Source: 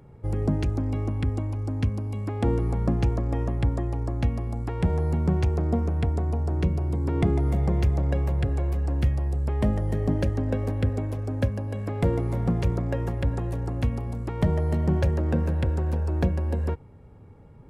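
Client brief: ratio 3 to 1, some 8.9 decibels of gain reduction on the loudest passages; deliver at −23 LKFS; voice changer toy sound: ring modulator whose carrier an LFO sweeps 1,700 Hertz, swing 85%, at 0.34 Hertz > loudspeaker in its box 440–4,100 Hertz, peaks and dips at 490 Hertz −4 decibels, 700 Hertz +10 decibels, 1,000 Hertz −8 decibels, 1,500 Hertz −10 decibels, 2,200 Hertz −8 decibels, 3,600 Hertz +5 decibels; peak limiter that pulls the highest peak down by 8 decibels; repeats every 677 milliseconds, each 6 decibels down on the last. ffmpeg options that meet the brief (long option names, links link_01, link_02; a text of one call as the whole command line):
ffmpeg -i in.wav -af "acompressor=threshold=-30dB:ratio=3,alimiter=level_in=1dB:limit=-24dB:level=0:latency=1,volume=-1dB,aecho=1:1:677|1354|2031|2708|3385|4062:0.501|0.251|0.125|0.0626|0.0313|0.0157,aeval=exprs='val(0)*sin(2*PI*1700*n/s+1700*0.85/0.34*sin(2*PI*0.34*n/s))':channel_layout=same,highpass=440,equalizer=frequency=490:width_type=q:width=4:gain=-4,equalizer=frequency=700:width_type=q:width=4:gain=10,equalizer=frequency=1000:width_type=q:width=4:gain=-8,equalizer=frequency=1500:width_type=q:width=4:gain=-10,equalizer=frequency=2200:width_type=q:width=4:gain=-8,equalizer=frequency=3600:width_type=q:width=4:gain=5,lowpass=frequency=4100:width=0.5412,lowpass=frequency=4100:width=1.3066,volume=11dB" out.wav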